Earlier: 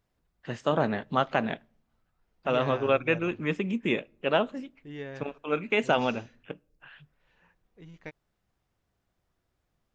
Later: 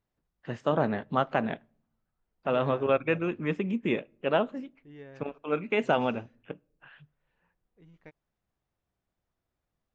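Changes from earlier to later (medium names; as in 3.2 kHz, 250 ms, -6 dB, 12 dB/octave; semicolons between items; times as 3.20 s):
second voice -7.5 dB; master: add treble shelf 3 kHz -10 dB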